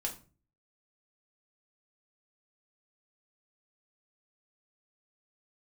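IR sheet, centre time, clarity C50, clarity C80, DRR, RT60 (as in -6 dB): 14 ms, 11.5 dB, 17.0 dB, -0.5 dB, 0.35 s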